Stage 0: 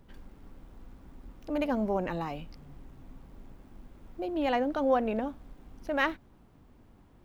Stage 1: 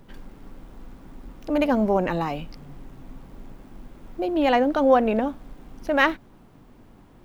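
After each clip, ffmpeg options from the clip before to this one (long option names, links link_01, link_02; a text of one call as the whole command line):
ffmpeg -i in.wav -af "equalizer=frequency=65:width_type=o:width=0.65:gain=-11.5,volume=8.5dB" out.wav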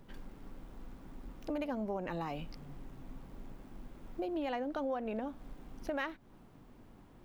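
ffmpeg -i in.wav -af "acompressor=threshold=-28dB:ratio=5,volume=-6.5dB" out.wav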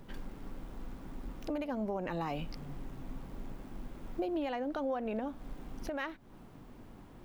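ffmpeg -i in.wav -af "alimiter=level_in=7.5dB:limit=-24dB:level=0:latency=1:release=373,volume=-7.5dB,volume=5dB" out.wav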